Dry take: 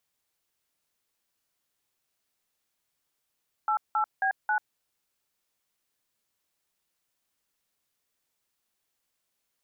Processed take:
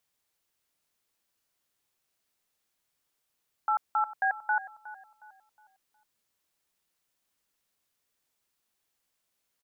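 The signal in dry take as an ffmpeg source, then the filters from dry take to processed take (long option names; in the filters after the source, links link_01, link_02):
-f lavfi -i "aevalsrc='0.0531*clip(min(mod(t,0.27),0.091-mod(t,0.27))/0.002,0,1)*(eq(floor(t/0.27),0)*(sin(2*PI*852*mod(t,0.27))+sin(2*PI*1336*mod(t,0.27)))+eq(floor(t/0.27),1)*(sin(2*PI*852*mod(t,0.27))+sin(2*PI*1336*mod(t,0.27)))+eq(floor(t/0.27),2)*(sin(2*PI*770*mod(t,0.27))+sin(2*PI*1633*mod(t,0.27)))+eq(floor(t/0.27),3)*(sin(2*PI*852*mod(t,0.27))+sin(2*PI*1477*mod(t,0.27))))':duration=1.08:sample_rate=44100"
-filter_complex "[0:a]asplit=2[link_01][link_02];[link_02]adelay=363,lowpass=frequency=1500:poles=1,volume=-14.5dB,asplit=2[link_03][link_04];[link_04]adelay=363,lowpass=frequency=1500:poles=1,volume=0.43,asplit=2[link_05][link_06];[link_06]adelay=363,lowpass=frequency=1500:poles=1,volume=0.43,asplit=2[link_07][link_08];[link_08]adelay=363,lowpass=frequency=1500:poles=1,volume=0.43[link_09];[link_01][link_03][link_05][link_07][link_09]amix=inputs=5:normalize=0"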